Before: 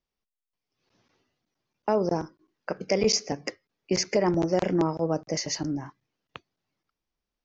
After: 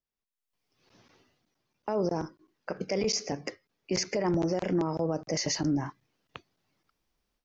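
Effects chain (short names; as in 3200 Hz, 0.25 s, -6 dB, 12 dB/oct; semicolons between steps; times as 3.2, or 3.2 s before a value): AGC gain up to 16 dB; limiter -11.5 dBFS, peak gain reduction 10 dB; gain -8.5 dB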